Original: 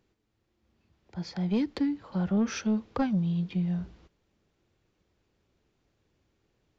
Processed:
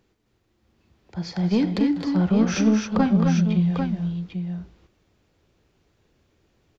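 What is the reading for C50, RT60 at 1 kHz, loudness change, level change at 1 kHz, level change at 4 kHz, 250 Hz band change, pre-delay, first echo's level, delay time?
none, none, +7.5 dB, +8.0 dB, +8.0 dB, +8.5 dB, none, -14.0 dB, 42 ms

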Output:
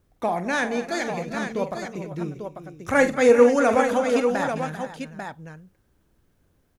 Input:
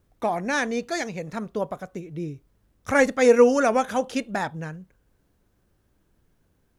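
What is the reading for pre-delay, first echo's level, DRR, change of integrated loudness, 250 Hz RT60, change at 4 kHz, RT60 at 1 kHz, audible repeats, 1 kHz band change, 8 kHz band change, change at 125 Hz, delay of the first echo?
none, -11.0 dB, none, +1.0 dB, none, +0.5 dB, none, 5, +1.5 dB, -1.0 dB, +1.5 dB, 46 ms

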